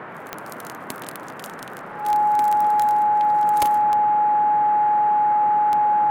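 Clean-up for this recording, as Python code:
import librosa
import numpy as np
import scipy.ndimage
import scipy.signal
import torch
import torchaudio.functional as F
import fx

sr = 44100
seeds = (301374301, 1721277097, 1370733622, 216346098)

y = fx.fix_declick_ar(x, sr, threshold=10.0)
y = fx.notch(y, sr, hz=840.0, q=30.0)
y = fx.noise_reduce(y, sr, print_start_s=0.01, print_end_s=0.51, reduce_db=30.0)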